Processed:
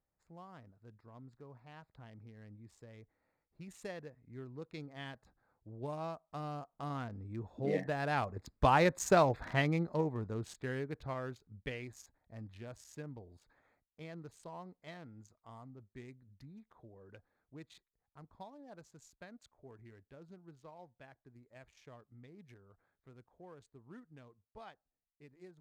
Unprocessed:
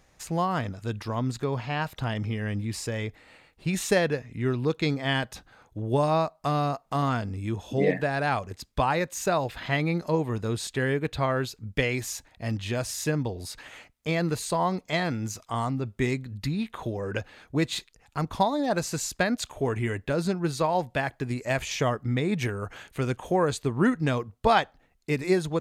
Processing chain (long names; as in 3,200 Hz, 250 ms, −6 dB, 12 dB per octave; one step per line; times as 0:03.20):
adaptive Wiener filter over 15 samples
source passing by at 0:09.01, 6 m/s, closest 2.6 metres